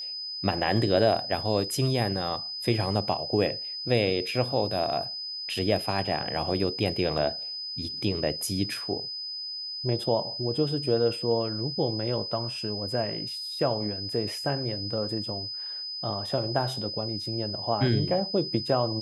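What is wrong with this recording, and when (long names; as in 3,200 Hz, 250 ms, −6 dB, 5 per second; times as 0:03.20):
whistle 5,000 Hz −33 dBFS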